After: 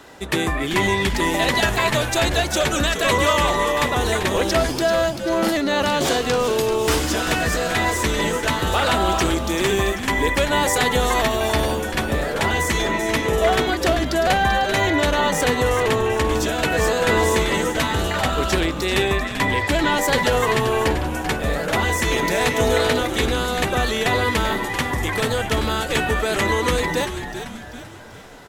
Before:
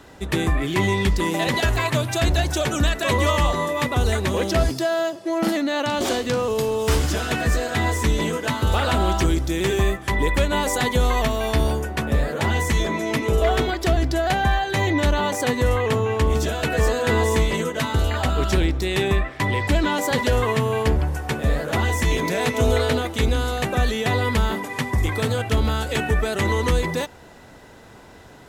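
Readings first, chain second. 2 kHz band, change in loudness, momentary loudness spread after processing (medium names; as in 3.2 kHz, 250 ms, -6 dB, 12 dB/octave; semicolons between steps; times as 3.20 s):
+4.5 dB, +2.0 dB, 4 LU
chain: bass shelf 220 Hz -10.5 dB; frequency-shifting echo 389 ms, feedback 47%, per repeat -130 Hz, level -9 dB; trim +4 dB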